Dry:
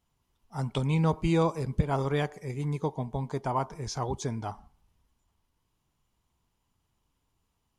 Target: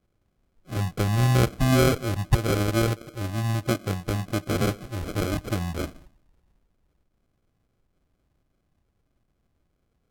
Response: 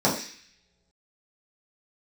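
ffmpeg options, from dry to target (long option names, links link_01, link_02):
-af "acrusher=samples=37:mix=1:aa=0.000001,asetrate=33957,aresample=44100,volume=5dB"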